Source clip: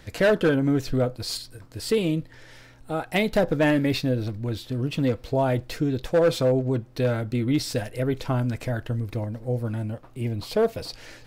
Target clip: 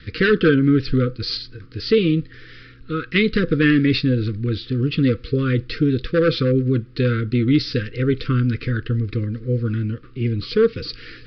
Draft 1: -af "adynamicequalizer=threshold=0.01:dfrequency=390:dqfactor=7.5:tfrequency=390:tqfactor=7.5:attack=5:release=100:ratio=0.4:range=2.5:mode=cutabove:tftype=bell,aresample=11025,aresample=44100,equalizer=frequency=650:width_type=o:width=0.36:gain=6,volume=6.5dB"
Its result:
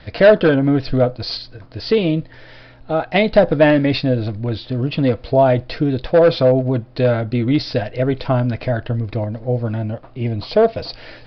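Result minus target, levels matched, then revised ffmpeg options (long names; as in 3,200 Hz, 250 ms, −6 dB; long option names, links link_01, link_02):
1,000 Hz band +8.5 dB
-af "adynamicequalizer=threshold=0.01:dfrequency=390:dqfactor=7.5:tfrequency=390:tqfactor=7.5:attack=5:release=100:ratio=0.4:range=2.5:mode=cutabove:tftype=bell,aresample=11025,aresample=44100,asuperstop=centerf=750:order=12:qfactor=1.1,equalizer=frequency=650:width_type=o:width=0.36:gain=6,volume=6.5dB"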